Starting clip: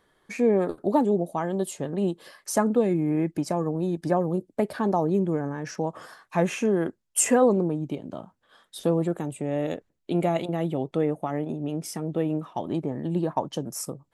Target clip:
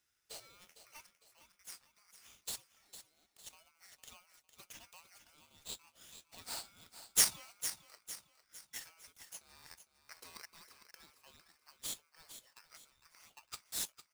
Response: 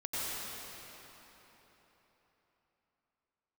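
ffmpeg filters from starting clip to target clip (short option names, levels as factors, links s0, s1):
-filter_complex "[0:a]asettb=1/sr,asplit=3[s0][s1][s2];[s0]atrim=end=1.064[s3];[s1]atrim=start=1.06:end=3.53,asetpts=PTS-STARTPTS,afade=t=in:d=0.004:c=qsin,afade=t=out:st=2.466:d=0.004:c=qsin,acompressor=threshold=0.0126:ratio=2.5[s4];[s2]atrim=start=3.526[s5];[s3][s4]acrossfade=d=0.004:c1=hsin:c2=qsin[s6];[s6][s5]acrossfade=d=0.004:c1=qsin:c2=hsin,bandpass=f=4500:t=q:w=1.1:csg=0,aderivative,aecho=1:1:455|910|1365|1820:0.266|0.106|0.0426|0.017,aeval=exprs='val(0)*sgn(sin(2*PI*1800*n/s))':c=same,volume=1.12"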